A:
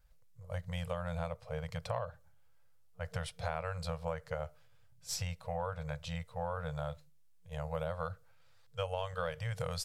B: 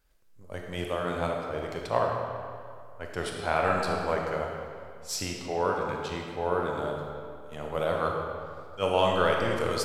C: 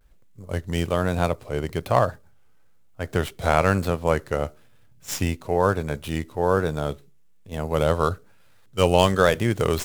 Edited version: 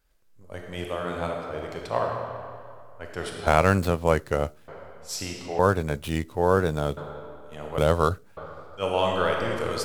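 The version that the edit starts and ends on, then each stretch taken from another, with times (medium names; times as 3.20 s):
B
3.47–4.68 s: from C
5.59–6.97 s: from C
7.78–8.37 s: from C
not used: A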